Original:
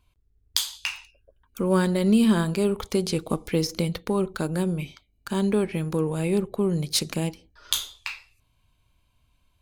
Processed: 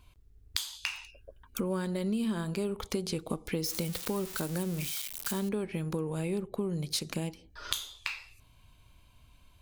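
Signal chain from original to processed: 3.64–5.49 switching spikes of -21 dBFS; compressor 4:1, threshold -40 dBFS, peak gain reduction 20.5 dB; gain +7 dB

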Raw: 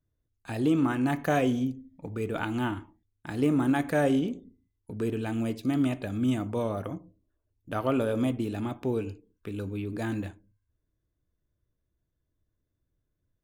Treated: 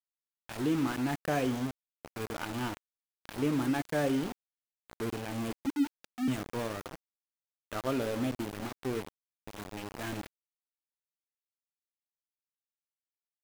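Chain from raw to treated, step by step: 5.66–6.28 sine-wave speech; sample gate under -29.5 dBFS; gain -5 dB

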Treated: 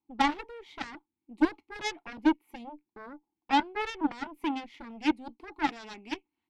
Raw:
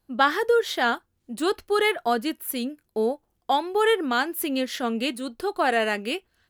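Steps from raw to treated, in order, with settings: vowel filter u; added harmonics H 2 -18 dB, 3 -20 dB, 7 -16 dB, 8 -29 dB, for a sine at -20.5 dBFS; gain +8 dB

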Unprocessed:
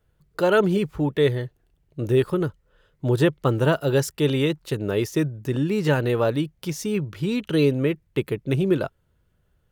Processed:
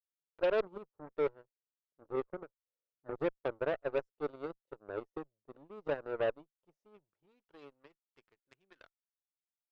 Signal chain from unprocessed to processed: band-pass sweep 550 Hz -> 1700 Hz, 6.52–8.82; added harmonics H 4 -24 dB, 5 -44 dB, 7 -17 dB, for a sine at -12.5 dBFS; gain -9 dB

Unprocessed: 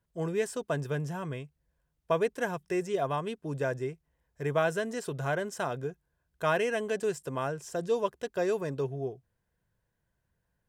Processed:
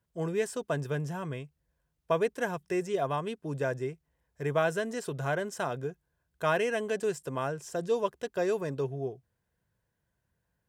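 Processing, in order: HPF 45 Hz

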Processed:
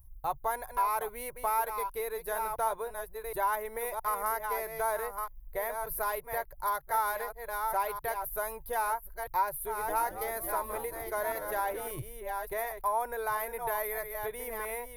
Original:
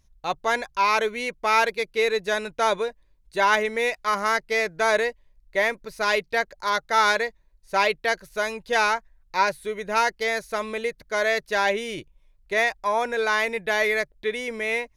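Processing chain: reverse delay 0.666 s, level -9 dB; compressor 2.5:1, threshold -27 dBFS, peak gain reduction 8.5 dB; EQ curve 130 Hz 0 dB, 190 Hz -27 dB, 320 Hz -17 dB, 550 Hz -15 dB, 900 Hz -7 dB, 2600 Hz -26 dB, 7200 Hz -23 dB, 12000 Hz +12 dB; 9.53–11.88 frequency-shifting echo 0.222 s, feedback 37%, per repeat -110 Hz, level -11 dB; gain +8.5 dB

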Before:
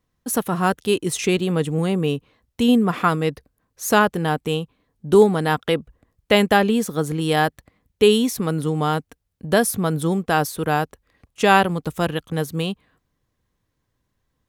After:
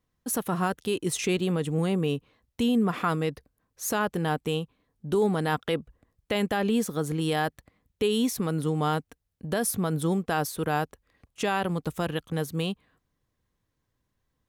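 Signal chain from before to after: limiter -11.5 dBFS, peak gain reduction 9.5 dB; gain -4.5 dB

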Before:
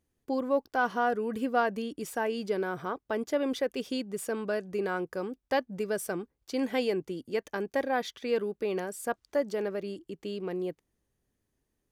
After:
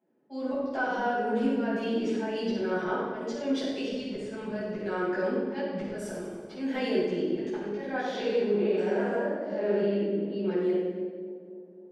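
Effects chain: 7.99–10.27 stepped spectrum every 0.2 s; steep high-pass 190 Hz 36 dB/oct; low-pass opened by the level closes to 690 Hz, open at -28 dBFS; LPF 6800 Hz 12 dB/oct; notch 1200 Hz, Q 7.4; auto swell 0.521 s; compressor 6:1, threshold -39 dBFS, peak gain reduction 14.5 dB; split-band echo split 750 Hz, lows 0.269 s, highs 93 ms, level -11 dB; reverb RT60 1.2 s, pre-delay 5 ms, DRR -12.5 dB; mismatched tape noise reduction encoder only; gain -1.5 dB

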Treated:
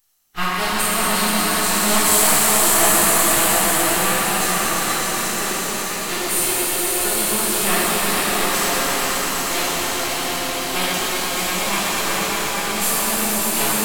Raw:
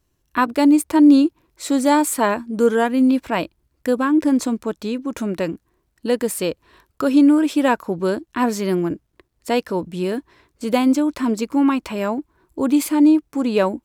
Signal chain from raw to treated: HPF 830 Hz 12 dB/oct; high shelf 2400 Hz +3 dB; on a send: swelling echo 0.12 s, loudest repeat 5, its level -6 dB; on the sum: half-wave rectifier; high shelf 6000 Hz +10.5 dB; formant-preserving pitch shift -5.5 st; reverse; upward compressor, threshold -29 dBFS; reverse; shimmer reverb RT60 2.7 s, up +7 st, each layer -8 dB, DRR -9.5 dB; gain -4 dB

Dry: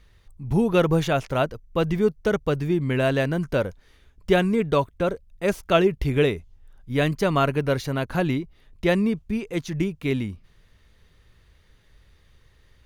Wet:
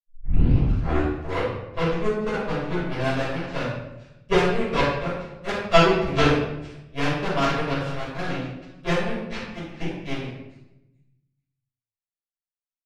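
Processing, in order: tape start at the beginning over 1.79 s; LPF 6700 Hz 12 dB/oct; in parallel at -5 dB: hard clip -18.5 dBFS, distortion -11 dB; on the sum: narrowing echo 0.436 s, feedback 57%, band-pass 2300 Hz, level -3.5 dB; power-law curve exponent 3; reverb RT60 0.90 s, pre-delay 5 ms, DRR -11 dB; gain -4 dB

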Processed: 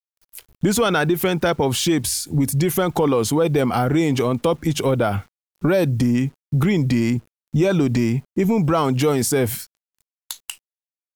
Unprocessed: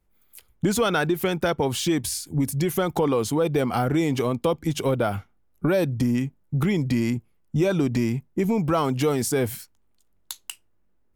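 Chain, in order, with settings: spectral noise reduction 8 dB; in parallel at +3 dB: limiter -22.5 dBFS, peak gain reduction 10.5 dB; on the sum: bit-crush 9-bit

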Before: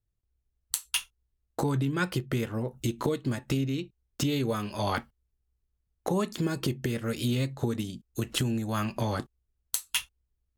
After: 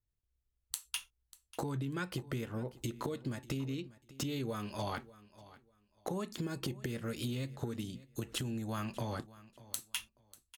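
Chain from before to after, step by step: compressor, threshold -28 dBFS, peak gain reduction 6 dB; feedback echo 0.592 s, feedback 22%, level -19 dB; gain -5.5 dB

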